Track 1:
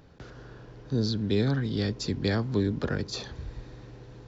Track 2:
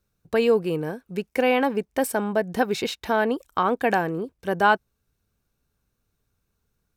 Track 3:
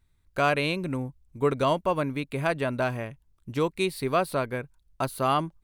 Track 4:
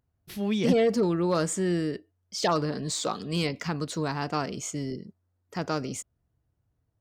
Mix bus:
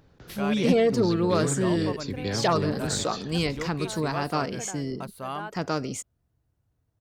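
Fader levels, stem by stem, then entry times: −4.0, −19.5, −10.0, +1.5 decibels; 0.00, 0.75, 0.00, 0.00 seconds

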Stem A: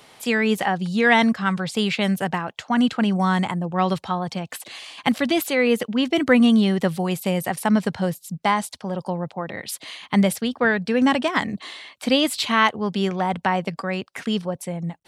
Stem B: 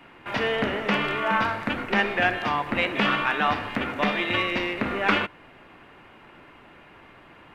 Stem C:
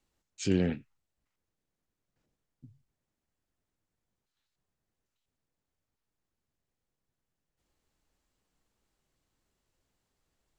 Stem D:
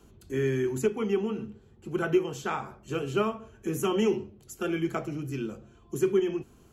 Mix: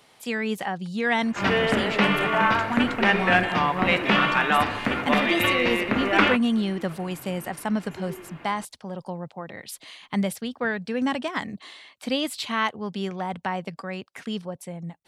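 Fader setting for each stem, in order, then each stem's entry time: −7.0, +2.5, −5.0, −16.0 decibels; 0.00, 1.10, 0.95, 1.95 seconds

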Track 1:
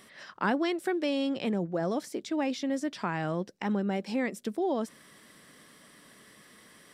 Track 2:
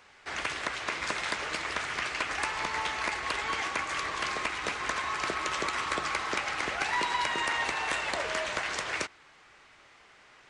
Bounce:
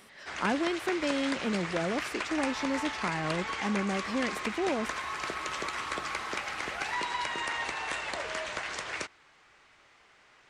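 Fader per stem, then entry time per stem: −1.5, −3.5 decibels; 0.00, 0.00 seconds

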